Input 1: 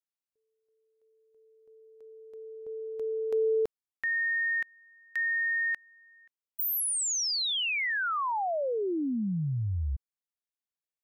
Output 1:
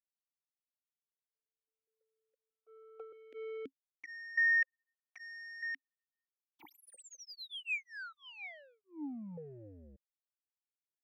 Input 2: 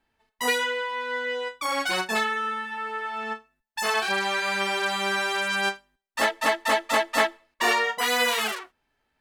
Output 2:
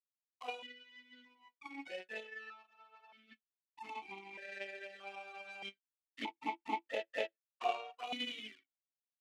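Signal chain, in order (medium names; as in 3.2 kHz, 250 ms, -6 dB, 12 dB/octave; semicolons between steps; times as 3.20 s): touch-sensitive flanger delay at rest 4.2 ms, full sweep at -21 dBFS; power-law waveshaper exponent 2; stepped vowel filter 1.6 Hz; trim +8.5 dB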